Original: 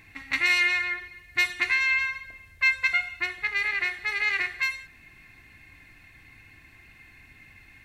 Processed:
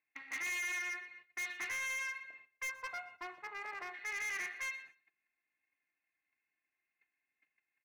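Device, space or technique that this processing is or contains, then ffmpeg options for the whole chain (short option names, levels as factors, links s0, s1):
walkie-talkie: -filter_complex "[0:a]asplit=3[s0][s1][s2];[s0]afade=t=out:st=2.68:d=0.02[s3];[s1]equalizer=f=125:t=o:w=1:g=8,equalizer=f=500:t=o:w=1:g=3,equalizer=f=1000:t=o:w=1:g=8,equalizer=f=2000:t=o:w=1:g=-12,equalizer=f=4000:t=o:w=1:g=-10,afade=t=in:st=2.68:d=0.02,afade=t=out:st=3.93:d=0.02[s4];[s2]afade=t=in:st=3.93:d=0.02[s5];[s3][s4][s5]amix=inputs=3:normalize=0,highpass=420,lowpass=2900,asoftclip=type=hard:threshold=0.0316,agate=range=0.0447:threshold=0.00355:ratio=16:detection=peak,aecho=1:1:121|242:0.0794|0.0199,volume=0.473"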